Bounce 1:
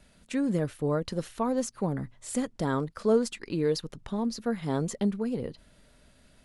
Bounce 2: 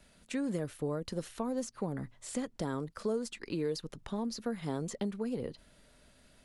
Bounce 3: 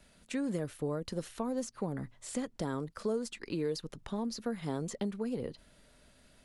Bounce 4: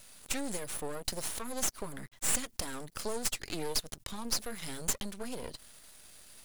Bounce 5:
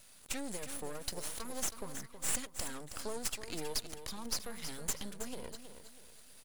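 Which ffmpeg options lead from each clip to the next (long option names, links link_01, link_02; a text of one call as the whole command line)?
ffmpeg -i in.wav -filter_complex "[0:a]bass=frequency=250:gain=-3,treble=frequency=4000:gain=1,acrossover=split=440|6600[link_01][link_02][link_03];[link_01]acompressor=threshold=-32dB:ratio=4[link_04];[link_02]acompressor=threshold=-38dB:ratio=4[link_05];[link_03]acompressor=threshold=-48dB:ratio=4[link_06];[link_04][link_05][link_06]amix=inputs=3:normalize=0,volume=-1.5dB" out.wav
ffmpeg -i in.wav -af anull out.wav
ffmpeg -i in.wav -af "crystalizer=i=8:c=0,aeval=exprs='max(val(0),0)':channel_layout=same" out.wav
ffmpeg -i in.wav -af "aecho=1:1:321|642|963|1284:0.316|0.114|0.041|0.0148,volume=-4.5dB" out.wav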